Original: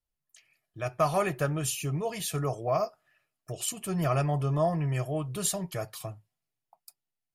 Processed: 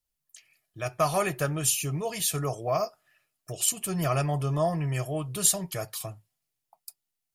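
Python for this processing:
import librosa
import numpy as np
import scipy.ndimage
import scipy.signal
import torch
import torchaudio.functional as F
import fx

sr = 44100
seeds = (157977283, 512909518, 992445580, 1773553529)

y = fx.high_shelf(x, sr, hz=3300.0, db=8.5)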